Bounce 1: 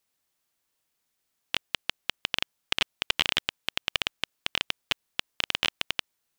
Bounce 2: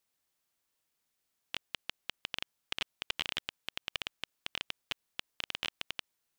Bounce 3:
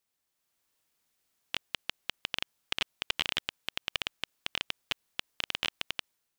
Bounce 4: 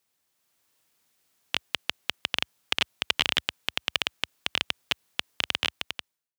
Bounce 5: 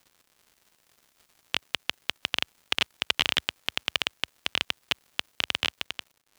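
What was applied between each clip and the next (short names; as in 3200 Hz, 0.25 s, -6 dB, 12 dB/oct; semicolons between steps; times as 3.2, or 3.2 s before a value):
limiter -12 dBFS, peak gain reduction 7 dB; gain -3.5 dB
AGC gain up to 6 dB; gain -1.5 dB
ending faded out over 0.88 s; HPF 68 Hz 24 dB/oct; gain +6.5 dB
crackle 190/s -46 dBFS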